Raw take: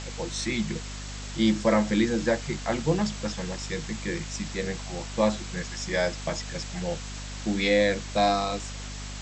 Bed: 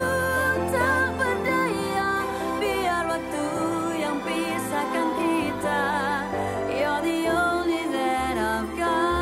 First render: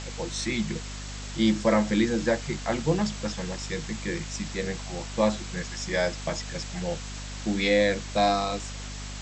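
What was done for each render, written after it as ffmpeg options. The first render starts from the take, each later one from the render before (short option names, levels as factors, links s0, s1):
-af anull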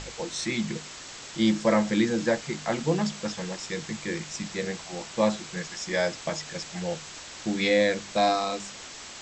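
-af "bandreject=f=50:t=h:w=4,bandreject=f=100:t=h:w=4,bandreject=f=150:t=h:w=4,bandreject=f=200:t=h:w=4,bandreject=f=250:t=h:w=4"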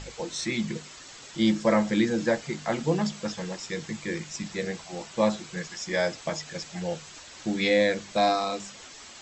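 -af "afftdn=nr=7:nf=-43"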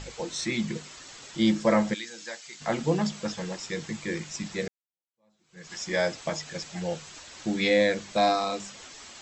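-filter_complex "[0:a]asplit=3[s0][s1][s2];[s0]afade=t=out:st=1.93:d=0.02[s3];[s1]bandpass=f=6700:t=q:w=0.55,afade=t=in:st=1.93:d=0.02,afade=t=out:st=2.6:d=0.02[s4];[s2]afade=t=in:st=2.6:d=0.02[s5];[s3][s4][s5]amix=inputs=3:normalize=0,asplit=2[s6][s7];[s6]atrim=end=4.68,asetpts=PTS-STARTPTS,afade=t=out:st=4.676:d=0.004:c=hsin[s8];[s7]atrim=start=4.68,asetpts=PTS-STARTPTS,afade=t=in:d=1.05:c=exp[s9];[s8][s9]concat=n=2:v=0:a=1"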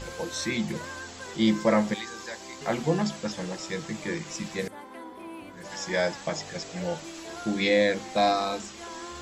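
-filter_complex "[1:a]volume=0.126[s0];[0:a][s0]amix=inputs=2:normalize=0"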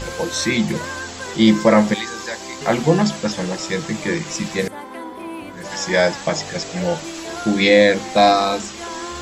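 -af "volume=3.16,alimiter=limit=0.891:level=0:latency=1"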